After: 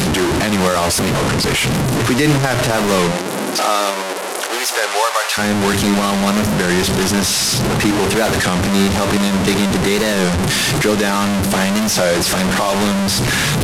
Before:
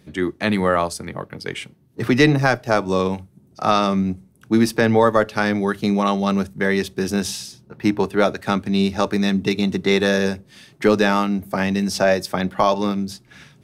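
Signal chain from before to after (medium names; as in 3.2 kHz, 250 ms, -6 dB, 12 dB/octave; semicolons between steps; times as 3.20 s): one-bit delta coder 64 kbps, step -13.5 dBFS; 3.12–5.37 s: high-pass 200 Hz -> 790 Hz 24 dB/octave; peak limiter -8.5 dBFS, peak gain reduction 6 dB; warped record 33 1/3 rpm, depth 160 cents; trim +3.5 dB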